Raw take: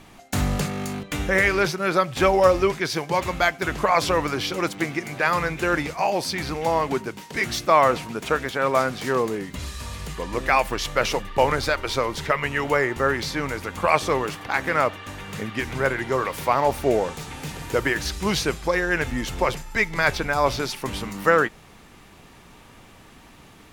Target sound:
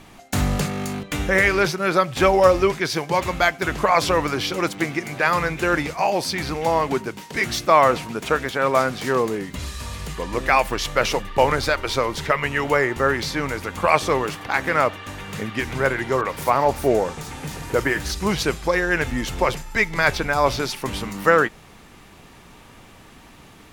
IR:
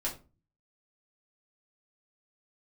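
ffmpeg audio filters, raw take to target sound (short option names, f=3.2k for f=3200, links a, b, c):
-filter_complex "[0:a]asettb=1/sr,asplit=3[a][b][c];[a]atrim=end=16.214[d];[b]atrim=start=16.21:end=18.43,asetpts=PTS-STARTPTS,afade=t=in:d=0.004:c=qsin,afade=t=out:st=2.216:d=0.004:c=qsin,acrossover=split=3000[e][f];[f]adelay=40[g];[e][g]amix=inputs=2:normalize=0,atrim=end_sample=97902[h];[c]atrim=start=18.426[i];[d][h]acrossfade=d=0.004:c1=hsin:c2=qsin[j];[j][i]acrossfade=d=0.004:c1=qsin:c2=hsin,volume=2dB"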